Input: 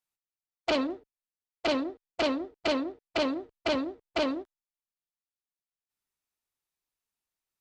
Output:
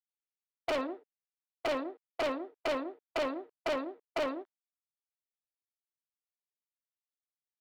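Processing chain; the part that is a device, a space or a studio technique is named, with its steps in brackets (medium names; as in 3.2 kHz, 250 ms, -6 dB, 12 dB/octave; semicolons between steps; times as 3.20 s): walkie-talkie (band-pass 420–2600 Hz; hard clipper -27.5 dBFS, distortion -11 dB; gate -49 dBFS, range -20 dB)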